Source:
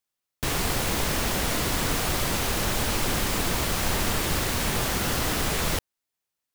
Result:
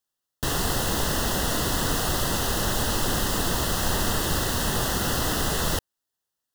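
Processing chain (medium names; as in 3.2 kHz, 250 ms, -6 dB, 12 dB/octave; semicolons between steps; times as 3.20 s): Butterworth band-stop 2.3 kHz, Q 3.3; trim +1 dB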